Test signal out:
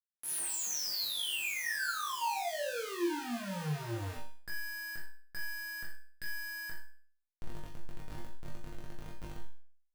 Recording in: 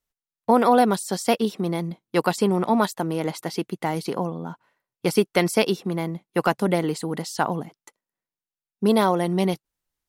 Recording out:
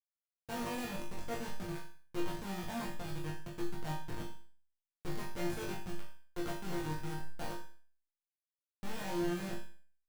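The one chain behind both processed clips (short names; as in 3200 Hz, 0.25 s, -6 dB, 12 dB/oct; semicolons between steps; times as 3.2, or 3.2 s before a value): Schmitt trigger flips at -23 dBFS; resonator bank A#2 sus4, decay 0.43 s; flutter echo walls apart 3.5 m, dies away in 0.4 s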